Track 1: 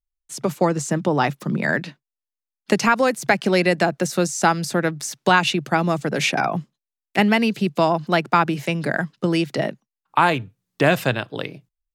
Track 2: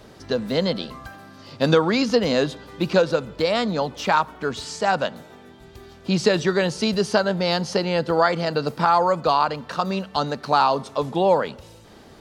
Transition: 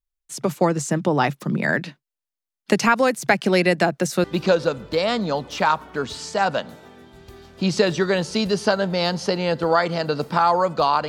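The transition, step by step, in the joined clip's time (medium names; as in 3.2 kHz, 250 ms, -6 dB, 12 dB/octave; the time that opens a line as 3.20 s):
track 1
4.24 s: go over to track 2 from 2.71 s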